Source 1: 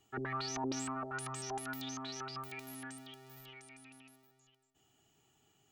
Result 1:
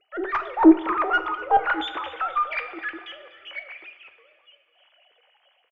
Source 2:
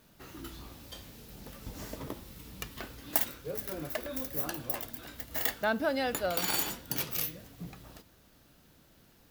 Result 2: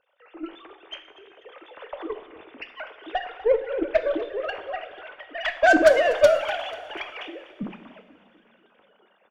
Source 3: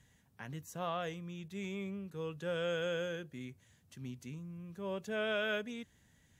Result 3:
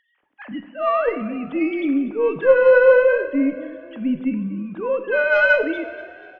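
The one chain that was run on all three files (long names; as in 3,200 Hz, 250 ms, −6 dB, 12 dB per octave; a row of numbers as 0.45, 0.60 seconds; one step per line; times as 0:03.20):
three sine waves on the formant tracks
dynamic equaliser 280 Hz, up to +6 dB, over −52 dBFS, Q 1.9
harmonic generator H 6 −22 dB, 7 −41 dB, 8 −21 dB, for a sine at −15 dBFS
automatic gain control gain up to 10 dB
echo with shifted repeats 244 ms, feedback 47%, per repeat +34 Hz, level −18 dB
coupled-rooms reverb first 0.63 s, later 3.2 s, from −16 dB, DRR 8 dB
normalise the peak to −3 dBFS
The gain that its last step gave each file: +7.0, 0.0, +10.0 decibels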